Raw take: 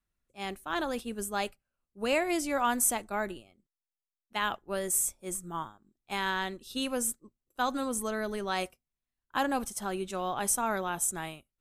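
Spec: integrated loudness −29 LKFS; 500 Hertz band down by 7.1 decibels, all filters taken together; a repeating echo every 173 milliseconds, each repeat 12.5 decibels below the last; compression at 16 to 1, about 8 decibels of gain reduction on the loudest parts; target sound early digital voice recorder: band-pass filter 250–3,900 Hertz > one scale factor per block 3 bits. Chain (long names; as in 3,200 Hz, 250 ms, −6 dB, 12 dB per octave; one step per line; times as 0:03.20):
parametric band 500 Hz −9 dB
downward compressor 16 to 1, threshold −31 dBFS
band-pass filter 250–3,900 Hz
repeating echo 173 ms, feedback 24%, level −12.5 dB
one scale factor per block 3 bits
level +10 dB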